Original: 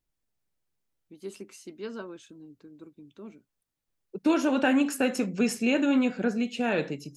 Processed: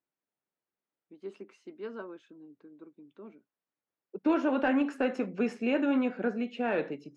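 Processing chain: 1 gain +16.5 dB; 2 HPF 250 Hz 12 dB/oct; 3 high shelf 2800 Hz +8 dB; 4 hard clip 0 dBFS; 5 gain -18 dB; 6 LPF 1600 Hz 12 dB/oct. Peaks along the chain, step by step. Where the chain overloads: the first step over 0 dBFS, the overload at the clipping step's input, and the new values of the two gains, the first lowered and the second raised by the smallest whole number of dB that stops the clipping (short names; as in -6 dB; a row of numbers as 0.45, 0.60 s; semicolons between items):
+3.0, +5.0, +7.0, 0.0, -18.0, -17.5 dBFS; step 1, 7.0 dB; step 1 +9.5 dB, step 5 -11 dB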